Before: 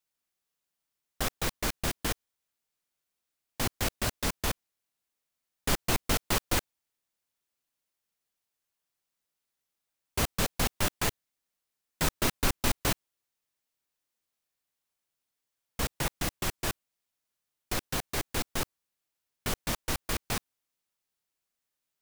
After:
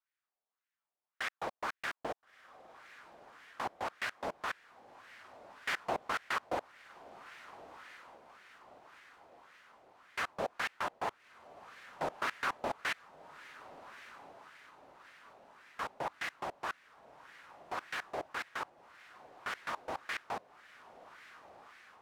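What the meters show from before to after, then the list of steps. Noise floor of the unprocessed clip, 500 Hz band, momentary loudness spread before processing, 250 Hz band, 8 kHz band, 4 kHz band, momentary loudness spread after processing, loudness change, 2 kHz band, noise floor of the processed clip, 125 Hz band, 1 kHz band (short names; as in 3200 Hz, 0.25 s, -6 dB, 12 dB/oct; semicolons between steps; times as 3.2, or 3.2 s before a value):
under -85 dBFS, -4.5 dB, 7 LU, -14.0 dB, -20.0 dB, -11.5 dB, 21 LU, -8.0 dB, -2.0 dB, under -85 dBFS, -22.0 dB, -0.5 dB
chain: diffused feedback echo 1.386 s, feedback 56%, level -15.5 dB; wah 1.8 Hz 650–1900 Hz, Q 2.4; gain +3.5 dB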